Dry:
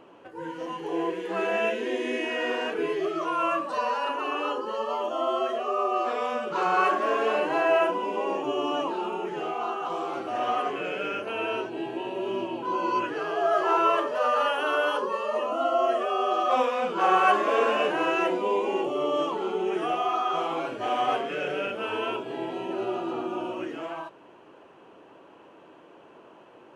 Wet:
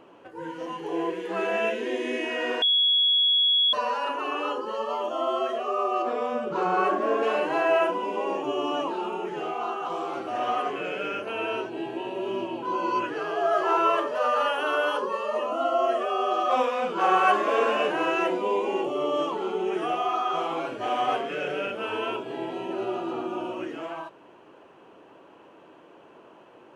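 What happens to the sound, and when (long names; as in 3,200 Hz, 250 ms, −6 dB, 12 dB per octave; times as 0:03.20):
0:02.62–0:03.73: beep over 3,350 Hz −18 dBFS
0:06.02–0:07.23: tilt shelving filter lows +6 dB, about 730 Hz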